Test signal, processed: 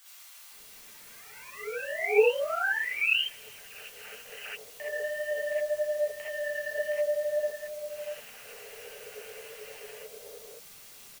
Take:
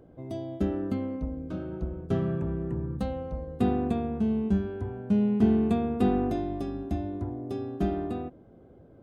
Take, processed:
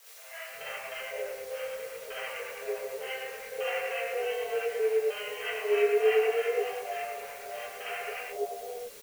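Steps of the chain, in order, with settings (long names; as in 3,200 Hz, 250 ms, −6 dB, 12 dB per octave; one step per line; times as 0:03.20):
running median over 41 samples
flanger 1.1 Hz, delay 8.1 ms, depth 9 ms, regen +12%
brick-wall band-pass 400–3,200 Hz
parametric band 2,300 Hz −9 dB 1.4 octaves
in parallel at 0 dB: brickwall limiter −35.5 dBFS
on the sum: high shelf with overshoot 1,500 Hz +13.5 dB, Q 1.5
two-band tremolo in antiphase 9.3 Hz, depth 70%, crossover 790 Hz
bit-depth reduction 10 bits, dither triangular
multiband delay without the direct sound highs, lows 510 ms, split 710 Hz
reverb whose tail is shaped and stops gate 90 ms rising, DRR −7.5 dB
level +2 dB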